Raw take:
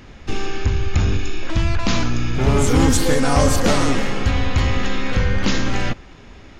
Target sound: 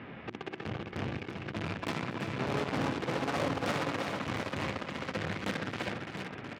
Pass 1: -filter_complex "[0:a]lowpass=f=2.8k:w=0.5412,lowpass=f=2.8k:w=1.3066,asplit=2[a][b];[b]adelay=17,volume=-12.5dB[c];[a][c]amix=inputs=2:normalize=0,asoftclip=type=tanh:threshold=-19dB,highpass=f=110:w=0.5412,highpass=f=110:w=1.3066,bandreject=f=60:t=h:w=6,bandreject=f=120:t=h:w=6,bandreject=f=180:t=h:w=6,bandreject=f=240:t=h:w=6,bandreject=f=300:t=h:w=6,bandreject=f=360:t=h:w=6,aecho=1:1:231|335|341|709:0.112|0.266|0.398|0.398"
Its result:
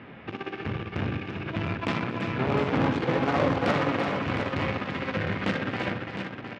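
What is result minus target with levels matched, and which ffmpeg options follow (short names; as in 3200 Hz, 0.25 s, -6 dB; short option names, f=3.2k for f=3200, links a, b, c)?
soft clip: distortion -4 dB
-filter_complex "[0:a]lowpass=f=2.8k:w=0.5412,lowpass=f=2.8k:w=1.3066,asplit=2[a][b];[b]adelay=17,volume=-12.5dB[c];[a][c]amix=inputs=2:normalize=0,asoftclip=type=tanh:threshold=-28.5dB,highpass=f=110:w=0.5412,highpass=f=110:w=1.3066,bandreject=f=60:t=h:w=6,bandreject=f=120:t=h:w=6,bandreject=f=180:t=h:w=6,bandreject=f=240:t=h:w=6,bandreject=f=300:t=h:w=6,bandreject=f=360:t=h:w=6,aecho=1:1:231|335|341|709:0.112|0.266|0.398|0.398"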